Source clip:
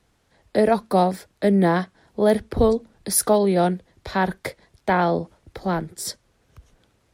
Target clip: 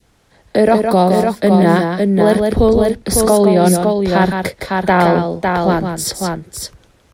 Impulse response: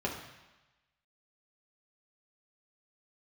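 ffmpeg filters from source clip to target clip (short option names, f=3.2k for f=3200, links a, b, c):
-filter_complex "[0:a]asettb=1/sr,asplit=3[a][b][c];[a]atrim=end=2.674[d];[b]atrim=start=2.67:end=3.71,asetpts=PTS-STARTPTS,afade=t=in:d=0.004:c=qsin,afade=t=out:st=1.036:d=0.004:c=qsin,highshelf=f=5.9k:g=-6[e];[c]atrim=start=3.706[f];[d][e]acrossfade=d=0.004:c1=hsin:c2=qsin[g];[g][f]acrossfade=d=0.004:c1=qsin:c2=hsin,aecho=1:1:164|554:0.447|0.531,adynamicequalizer=threshold=0.0282:dfrequency=1100:dqfactor=0.76:tfrequency=1100:tqfactor=0.76:attack=5:release=100:ratio=0.375:range=2:mode=cutabove:tftype=bell,alimiter=level_in=10dB:limit=-1dB:release=50:level=0:latency=1,volume=-1dB"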